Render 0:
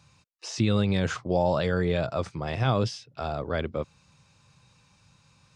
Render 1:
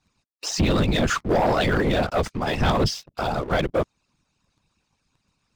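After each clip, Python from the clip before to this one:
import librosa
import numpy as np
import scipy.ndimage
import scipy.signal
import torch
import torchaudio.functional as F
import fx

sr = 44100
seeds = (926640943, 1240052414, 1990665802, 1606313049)

y = fx.whisperise(x, sr, seeds[0])
y = fx.hpss(y, sr, part='harmonic', gain_db=-15)
y = fx.leveller(y, sr, passes=3)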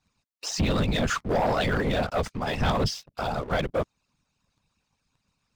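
y = fx.peak_eq(x, sr, hz=340.0, db=-6.0, octaves=0.3)
y = y * 10.0 ** (-3.5 / 20.0)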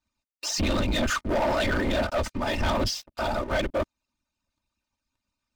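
y = x + 0.77 * np.pad(x, (int(3.3 * sr / 1000.0), 0))[:len(x)]
y = fx.leveller(y, sr, passes=2)
y = y * 10.0 ** (-6.0 / 20.0)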